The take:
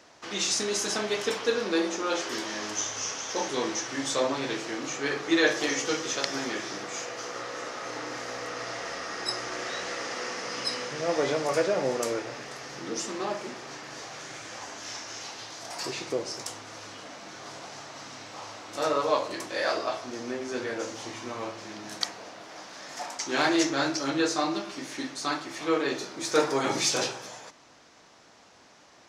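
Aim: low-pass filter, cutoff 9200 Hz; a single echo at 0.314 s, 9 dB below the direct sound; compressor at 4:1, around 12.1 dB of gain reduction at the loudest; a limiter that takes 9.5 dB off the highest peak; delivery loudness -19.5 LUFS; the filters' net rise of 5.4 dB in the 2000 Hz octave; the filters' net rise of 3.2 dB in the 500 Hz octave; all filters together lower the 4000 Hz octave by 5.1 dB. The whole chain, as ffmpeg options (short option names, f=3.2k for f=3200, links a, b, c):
-af "lowpass=9.2k,equalizer=f=500:t=o:g=3.5,equalizer=f=2k:t=o:g=8.5,equalizer=f=4k:t=o:g=-9,acompressor=threshold=-29dB:ratio=4,alimiter=level_in=0.5dB:limit=-24dB:level=0:latency=1,volume=-0.5dB,aecho=1:1:314:0.355,volume=14.5dB"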